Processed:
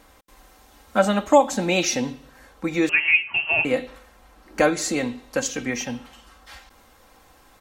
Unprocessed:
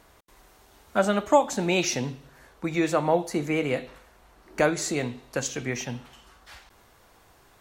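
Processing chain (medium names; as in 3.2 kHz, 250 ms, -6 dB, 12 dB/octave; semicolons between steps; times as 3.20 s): comb 3.8 ms, depth 55%; 2.89–3.65 s: frequency inversion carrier 3 kHz; trim +2.5 dB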